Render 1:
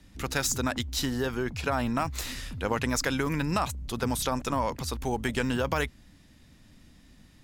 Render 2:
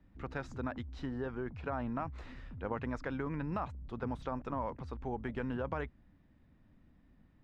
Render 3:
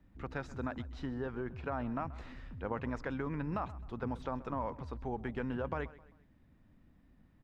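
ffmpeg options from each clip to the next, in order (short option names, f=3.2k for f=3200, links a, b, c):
-af "lowpass=1.5k,volume=-8.5dB"
-af "aecho=1:1:131|262|393:0.119|0.0487|0.02"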